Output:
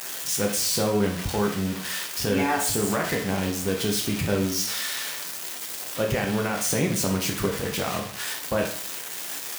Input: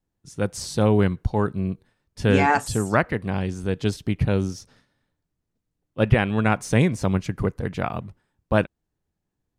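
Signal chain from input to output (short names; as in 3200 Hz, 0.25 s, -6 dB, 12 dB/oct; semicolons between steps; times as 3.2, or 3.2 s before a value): switching spikes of -13.5 dBFS; HPF 170 Hz 6 dB/oct; high shelf 4800 Hz -11.5 dB; limiter -16 dBFS, peak gain reduction 10.5 dB; plate-style reverb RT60 0.5 s, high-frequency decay 1×, DRR 0.5 dB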